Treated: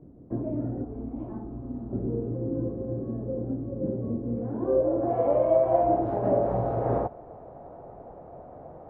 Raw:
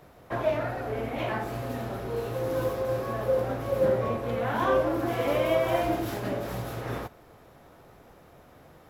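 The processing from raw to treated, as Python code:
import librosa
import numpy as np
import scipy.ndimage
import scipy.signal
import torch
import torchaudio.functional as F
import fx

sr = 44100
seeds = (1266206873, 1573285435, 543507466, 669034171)

y = fx.graphic_eq(x, sr, hz=(125, 250, 500, 1000, 2000), db=(-11, -6, -11, 4, -8), at=(0.84, 1.93))
y = fx.rider(y, sr, range_db=5, speed_s=0.5)
y = fx.filter_sweep_lowpass(y, sr, from_hz=280.0, to_hz=700.0, start_s=4.35, end_s=5.17, q=2.5)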